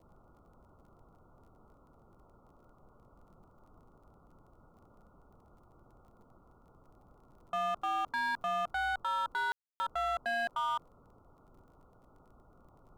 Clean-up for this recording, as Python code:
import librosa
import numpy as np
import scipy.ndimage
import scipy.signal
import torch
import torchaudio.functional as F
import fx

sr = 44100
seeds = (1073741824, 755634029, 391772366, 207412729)

y = fx.fix_declip(x, sr, threshold_db=-29.5)
y = fx.fix_declick_ar(y, sr, threshold=6.5)
y = fx.fix_ambience(y, sr, seeds[0], print_start_s=11.63, print_end_s=12.13, start_s=9.52, end_s=9.8)
y = fx.noise_reduce(y, sr, print_start_s=11.63, print_end_s=12.13, reduce_db=19.0)